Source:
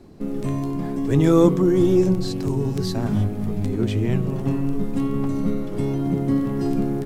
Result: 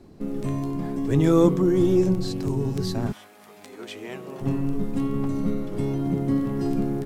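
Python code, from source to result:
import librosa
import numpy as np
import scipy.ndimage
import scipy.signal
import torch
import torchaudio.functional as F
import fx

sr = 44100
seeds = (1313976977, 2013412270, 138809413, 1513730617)

y = fx.highpass(x, sr, hz=fx.line((3.11, 1400.0), (4.4, 400.0)), slope=12, at=(3.11, 4.4), fade=0.02)
y = y * librosa.db_to_amplitude(-2.5)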